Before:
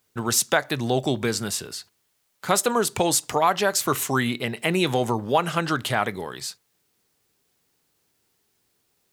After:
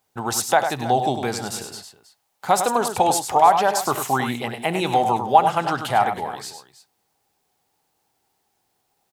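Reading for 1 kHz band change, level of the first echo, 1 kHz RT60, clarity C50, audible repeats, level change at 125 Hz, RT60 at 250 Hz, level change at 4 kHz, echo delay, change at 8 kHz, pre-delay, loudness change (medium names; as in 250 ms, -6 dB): +8.0 dB, -18.0 dB, no reverb, no reverb, 3, -2.0 dB, no reverb, -2.0 dB, 67 ms, -2.0 dB, no reverb, +3.0 dB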